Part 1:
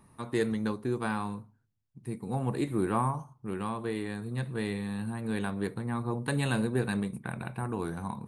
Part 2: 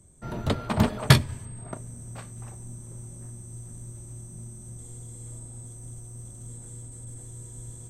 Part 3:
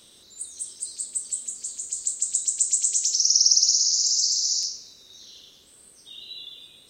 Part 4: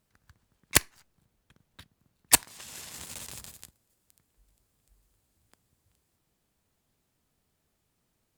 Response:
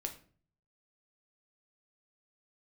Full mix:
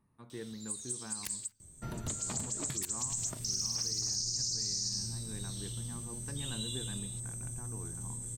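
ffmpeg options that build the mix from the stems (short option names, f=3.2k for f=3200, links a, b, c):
-filter_complex "[0:a]highshelf=f=2.8k:g=-9,volume=-12.5dB,asplit=2[a][b];[1:a]highshelf=f=5.7k:g=7.5,acompressor=threshold=-34dB:ratio=12,adelay=1600,volume=-1dB[c];[2:a]alimiter=limit=-16dB:level=0:latency=1:release=215,adelay=300,volume=-2.5dB[d];[3:a]highshelf=f=2.9k:g=7.5,adelay=500,volume=-13.5dB[e];[b]apad=whole_len=317413[f];[d][f]sidechaingate=range=-31dB:threshold=-57dB:ratio=16:detection=peak[g];[a][c][g][e]amix=inputs=4:normalize=0,equalizer=f=690:w=0.65:g=-4.5,alimiter=level_in=1dB:limit=-24dB:level=0:latency=1:release=100,volume=-1dB"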